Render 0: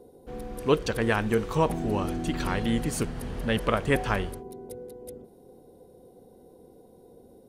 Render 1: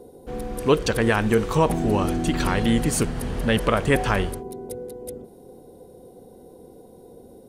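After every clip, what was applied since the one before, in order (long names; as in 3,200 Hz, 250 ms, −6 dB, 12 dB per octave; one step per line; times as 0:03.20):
in parallel at +1 dB: brickwall limiter −17.5 dBFS, peak gain reduction 8.5 dB
on the sum: parametric band 8,400 Hz +2.5 dB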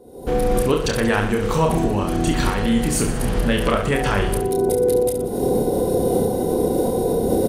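camcorder AGC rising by 58 dB per second
shaped tremolo saw up 1.6 Hz, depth 35%
on a send: reverse bouncing-ball delay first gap 30 ms, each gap 1.3×, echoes 5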